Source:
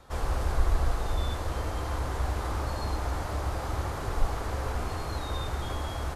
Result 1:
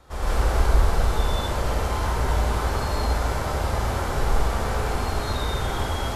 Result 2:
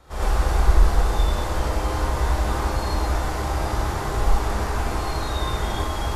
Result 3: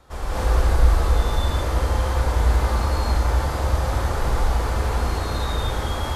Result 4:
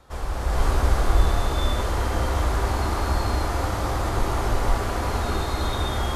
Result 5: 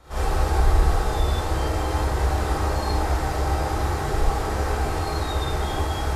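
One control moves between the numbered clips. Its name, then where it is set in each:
gated-style reverb, gate: 200 ms, 130 ms, 290 ms, 530 ms, 90 ms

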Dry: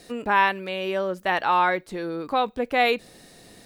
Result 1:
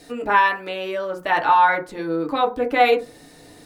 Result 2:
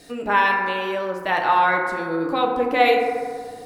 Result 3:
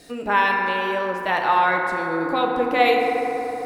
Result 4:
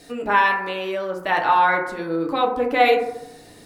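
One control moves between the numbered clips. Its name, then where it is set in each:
FDN reverb, RT60: 0.31 s, 2 s, 4.2 s, 0.86 s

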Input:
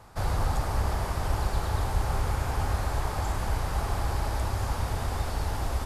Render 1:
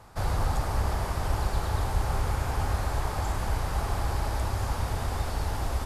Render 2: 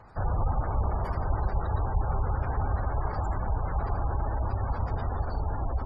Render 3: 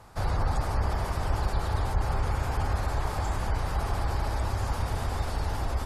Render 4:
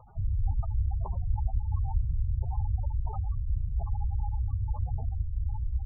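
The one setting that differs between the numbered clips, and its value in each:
spectral gate, under each frame's peak: -60 dB, -25 dB, -40 dB, -10 dB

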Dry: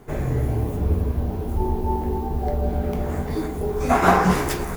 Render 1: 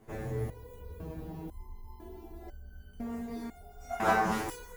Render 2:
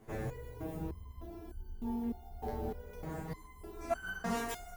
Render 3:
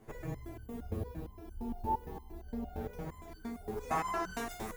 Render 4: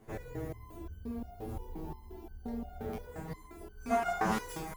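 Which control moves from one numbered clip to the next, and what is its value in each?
resonator arpeggio, rate: 2 Hz, 3.3 Hz, 8.7 Hz, 5.7 Hz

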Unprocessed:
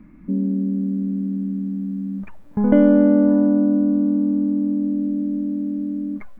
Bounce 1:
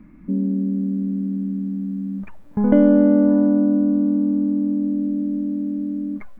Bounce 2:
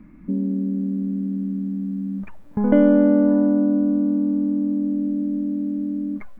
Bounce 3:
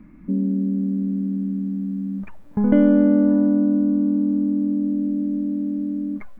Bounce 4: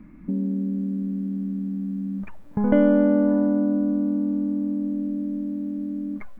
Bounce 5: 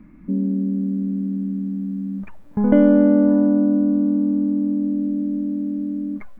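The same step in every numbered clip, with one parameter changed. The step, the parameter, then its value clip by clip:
dynamic bell, frequency: 2.2 kHz, 110 Hz, 740 Hz, 280 Hz, 7.8 kHz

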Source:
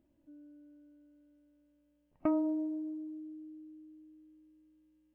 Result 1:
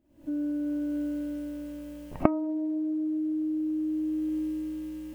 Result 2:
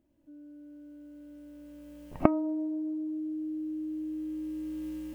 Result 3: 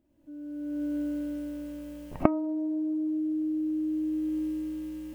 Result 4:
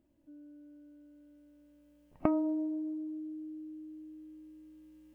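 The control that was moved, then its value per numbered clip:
recorder AGC, rising by: 86 dB/s, 13 dB/s, 35 dB/s, 5 dB/s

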